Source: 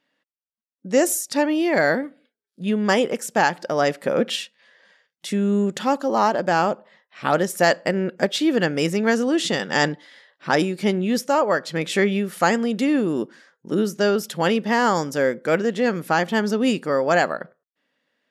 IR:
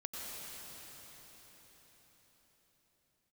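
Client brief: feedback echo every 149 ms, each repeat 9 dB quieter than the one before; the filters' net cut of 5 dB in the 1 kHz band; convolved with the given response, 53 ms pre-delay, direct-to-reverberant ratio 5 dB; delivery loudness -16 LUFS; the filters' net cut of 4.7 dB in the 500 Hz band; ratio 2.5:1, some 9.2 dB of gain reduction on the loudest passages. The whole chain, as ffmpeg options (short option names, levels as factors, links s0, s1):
-filter_complex "[0:a]equalizer=f=500:t=o:g=-4.5,equalizer=f=1000:t=o:g=-5,acompressor=threshold=0.0282:ratio=2.5,aecho=1:1:149|298|447|596:0.355|0.124|0.0435|0.0152,asplit=2[s0][s1];[1:a]atrim=start_sample=2205,adelay=53[s2];[s1][s2]afir=irnorm=-1:irlink=0,volume=0.501[s3];[s0][s3]amix=inputs=2:normalize=0,volume=5.31"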